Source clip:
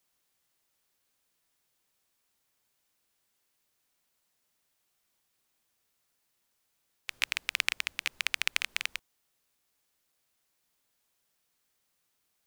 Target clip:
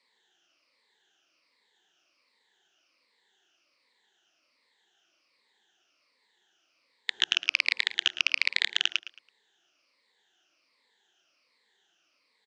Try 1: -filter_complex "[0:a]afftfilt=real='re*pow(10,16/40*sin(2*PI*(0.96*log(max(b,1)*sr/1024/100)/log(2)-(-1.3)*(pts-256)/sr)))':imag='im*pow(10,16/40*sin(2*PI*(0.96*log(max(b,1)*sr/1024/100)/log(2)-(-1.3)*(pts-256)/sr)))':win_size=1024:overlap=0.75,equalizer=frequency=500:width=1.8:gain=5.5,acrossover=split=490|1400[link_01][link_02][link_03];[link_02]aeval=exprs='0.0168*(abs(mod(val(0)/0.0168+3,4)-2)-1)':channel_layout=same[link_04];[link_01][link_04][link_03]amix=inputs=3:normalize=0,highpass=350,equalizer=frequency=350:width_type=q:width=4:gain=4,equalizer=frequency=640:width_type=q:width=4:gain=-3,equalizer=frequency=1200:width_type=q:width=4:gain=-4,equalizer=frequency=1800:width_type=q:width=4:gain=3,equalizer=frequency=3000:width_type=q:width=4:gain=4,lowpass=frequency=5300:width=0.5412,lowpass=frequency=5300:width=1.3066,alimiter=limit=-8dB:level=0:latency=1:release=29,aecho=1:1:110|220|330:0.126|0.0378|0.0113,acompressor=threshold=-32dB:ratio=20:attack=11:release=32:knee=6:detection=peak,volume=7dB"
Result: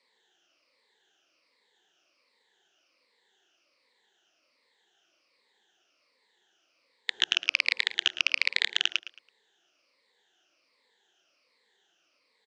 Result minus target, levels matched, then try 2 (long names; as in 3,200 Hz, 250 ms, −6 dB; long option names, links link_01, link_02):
500 Hz band +3.5 dB
-filter_complex "[0:a]afftfilt=real='re*pow(10,16/40*sin(2*PI*(0.96*log(max(b,1)*sr/1024/100)/log(2)-(-1.3)*(pts-256)/sr)))':imag='im*pow(10,16/40*sin(2*PI*(0.96*log(max(b,1)*sr/1024/100)/log(2)-(-1.3)*(pts-256)/sr)))':win_size=1024:overlap=0.75,acrossover=split=490|1400[link_01][link_02][link_03];[link_02]aeval=exprs='0.0168*(abs(mod(val(0)/0.0168+3,4)-2)-1)':channel_layout=same[link_04];[link_01][link_04][link_03]amix=inputs=3:normalize=0,highpass=350,equalizer=frequency=350:width_type=q:width=4:gain=4,equalizer=frequency=640:width_type=q:width=4:gain=-3,equalizer=frequency=1200:width_type=q:width=4:gain=-4,equalizer=frequency=1800:width_type=q:width=4:gain=3,equalizer=frequency=3000:width_type=q:width=4:gain=4,lowpass=frequency=5300:width=0.5412,lowpass=frequency=5300:width=1.3066,alimiter=limit=-8dB:level=0:latency=1:release=29,aecho=1:1:110|220|330:0.126|0.0378|0.0113,acompressor=threshold=-32dB:ratio=20:attack=11:release=32:knee=6:detection=peak,volume=7dB"